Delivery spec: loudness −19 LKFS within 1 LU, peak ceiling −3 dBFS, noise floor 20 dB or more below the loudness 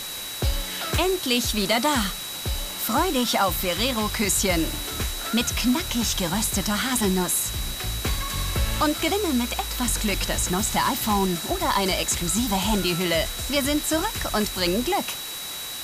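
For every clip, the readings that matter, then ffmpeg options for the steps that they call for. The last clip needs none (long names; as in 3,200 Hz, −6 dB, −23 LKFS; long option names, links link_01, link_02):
interfering tone 3,900 Hz; level of the tone −35 dBFS; background noise floor −33 dBFS; target noise floor −44 dBFS; integrated loudness −23.5 LKFS; sample peak −10.0 dBFS; target loudness −19.0 LKFS
→ -af "bandreject=frequency=3900:width=30"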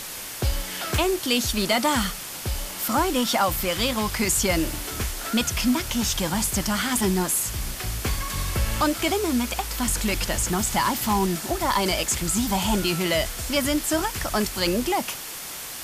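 interfering tone none found; background noise floor −35 dBFS; target noise floor −44 dBFS
→ -af "afftdn=noise_reduction=9:noise_floor=-35"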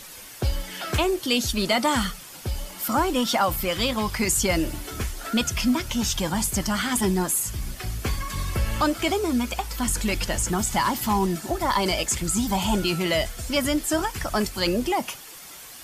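background noise floor −42 dBFS; target noise floor −45 dBFS
→ -af "afftdn=noise_reduction=6:noise_floor=-42"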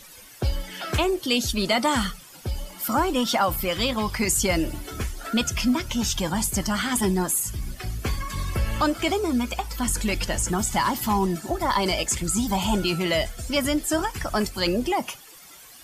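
background noise floor −47 dBFS; integrated loudness −25.0 LKFS; sample peak −11.0 dBFS; target loudness −19.0 LKFS
→ -af "volume=6dB"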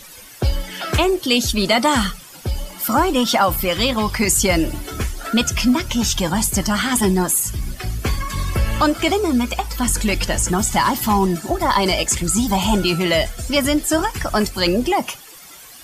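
integrated loudness −19.0 LKFS; sample peak −5.0 dBFS; background noise floor −41 dBFS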